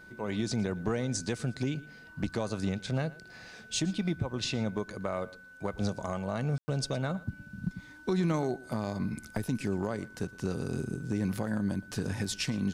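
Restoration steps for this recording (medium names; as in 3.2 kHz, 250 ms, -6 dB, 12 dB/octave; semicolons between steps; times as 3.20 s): band-stop 1.5 kHz, Q 30; room tone fill 6.58–6.68 s; expander -43 dBFS, range -21 dB; inverse comb 116 ms -20.5 dB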